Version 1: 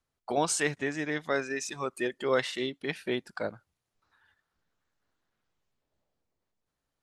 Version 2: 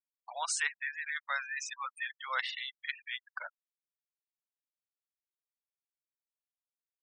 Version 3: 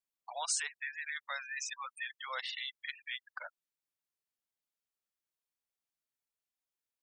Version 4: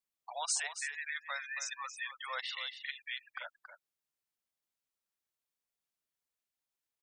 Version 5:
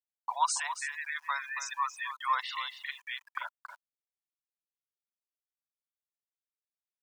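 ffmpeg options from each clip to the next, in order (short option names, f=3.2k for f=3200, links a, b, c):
-af "highpass=f=980:w=0.5412,highpass=f=980:w=1.3066,afftfilt=real='re*gte(hypot(re,im),0.0158)':imag='im*gte(hypot(re,im),0.0158)':win_size=1024:overlap=0.75,highshelf=f=10k:g=-12"
-filter_complex "[0:a]acrossover=split=750|2200|3500[a][b][c][d];[b]acompressor=threshold=-46dB:ratio=6[e];[c]alimiter=level_in=11.5dB:limit=-24dB:level=0:latency=1:release=162,volume=-11.5dB[f];[a][e][f][d]amix=inputs=4:normalize=0,volume=1dB"
-af "aecho=1:1:277:0.316"
-af "aeval=exprs='val(0)*gte(abs(val(0)),0.00119)':c=same,highpass=f=1k:t=q:w=7.8"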